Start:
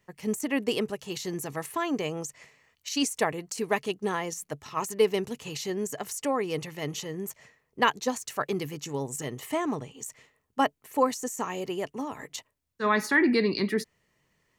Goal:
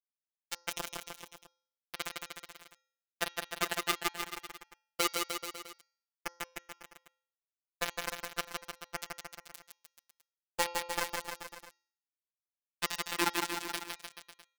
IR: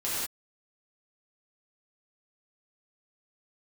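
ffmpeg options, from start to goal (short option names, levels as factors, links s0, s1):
-filter_complex "[0:a]highpass=75,aecho=1:1:7.2:0.78,asplit=2[s0][s1];[s1]adelay=67,lowpass=f=2500:p=1,volume=0.282,asplit=2[s2][s3];[s3]adelay=67,lowpass=f=2500:p=1,volume=0.26,asplit=2[s4][s5];[s5]adelay=67,lowpass=f=2500:p=1,volume=0.26[s6];[s2][s4][s6]amix=inputs=3:normalize=0[s7];[s0][s7]amix=inputs=2:normalize=0,acrossover=split=270|840|2700[s8][s9][s10][s11];[s8]acompressor=threshold=0.0178:ratio=4[s12];[s9]acompressor=threshold=0.0501:ratio=4[s13];[s10]acompressor=threshold=0.0112:ratio=4[s14];[s11]acompressor=threshold=0.00631:ratio=4[s15];[s12][s13][s14][s15]amix=inputs=4:normalize=0,flanger=delay=3.5:depth=6.1:regen=55:speed=0.85:shape=triangular,acrusher=bits=3:mix=0:aa=0.000001,lowshelf=f=450:g=-8,bandreject=f=272.2:t=h:w=4,bandreject=f=544.4:t=h:w=4,bandreject=f=816.6:t=h:w=4,bandreject=f=1088.8:t=h:w=4,bandreject=f=1361:t=h:w=4,bandreject=f=1633.2:t=h:w=4,bandreject=f=1905.4:t=h:w=4,bandreject=f=2177.6:t=h:w=4,bandreject=f=2449.8:t=h:w=4,bandreject=f=2722:t=h:w=4,bandreject=f=2994.2:t=h:w=4,bandreject=f=3266.4:t=h:w=4,bandreject=f=3538.6:t=h:w=4,bandreject=f=3810.8:t=h:w=4,bandreject=f=4083:t=h:w=4,bandreject=f=4355.2:t=h:w=4,bandreject=f=4627.4:t=h:w=4,bandreject=f=4899.6:t=h:w=4,bandreject=f=5171.8:t=h:w=4,bandreject=f=5444:t=h:w=4,bandreject=f=5716.2:t=h:w=4,bandreject=f=5988.4:t=h:w=4,bandreject=f=6260.6:t=h:w=4,bandreject=f=6532.8:t=h:w=4,bandreject=f=6805:t=h:w=4,asplit=2[s16][s17];[s17]aecho=0:1:160|304|433.6|550.2|655.2:0.631|0.398|0.251|0.158|0.1[s18];[s16][s18]amix=inputs=2:normalize=0,afftfilt=real='hypot(re,im)*cos(PI*b)':imag='0':win_size=1024:overlap=0.75,volume=1.58"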